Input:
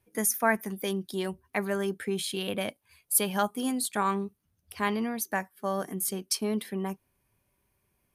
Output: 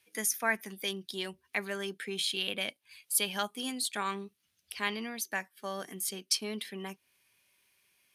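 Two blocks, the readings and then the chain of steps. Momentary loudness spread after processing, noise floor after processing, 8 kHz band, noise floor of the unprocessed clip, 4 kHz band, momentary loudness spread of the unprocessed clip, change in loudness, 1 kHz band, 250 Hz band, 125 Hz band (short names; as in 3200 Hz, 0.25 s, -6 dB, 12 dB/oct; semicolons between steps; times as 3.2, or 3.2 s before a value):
11 LU, -77 dBFS, -3.0 dB, -76 dBFS, +3.5 dB, 9 LU, -4.0 dB, -7.0 dB, -9.5 dB, -10.5 dB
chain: weighting filter D; mismatched tape noise reduction encoder only; gain -7.5 dB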